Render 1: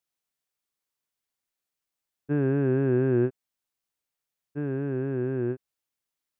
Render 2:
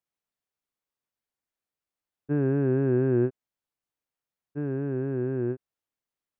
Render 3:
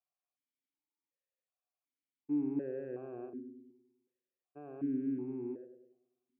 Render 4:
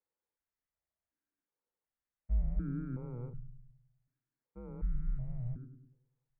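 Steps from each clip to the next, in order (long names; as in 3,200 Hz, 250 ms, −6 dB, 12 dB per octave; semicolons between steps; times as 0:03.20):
high-shelf EQ 2,400 Hz −9.5 dB
in parallel at −1.5 dB: compressor whose output falls as the input rises −32 dBFS, ratio −1; on the sum: feedback echo with a low-pass in the loop 102 ms, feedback 56%, low-pass 870 Hz, level −7 dB; formant filter that steps through the vowels 2.7 Hz; level −4.5 dB
single-sideband voice off tune −240 Hz 200–2,200 Hz; level +3 dB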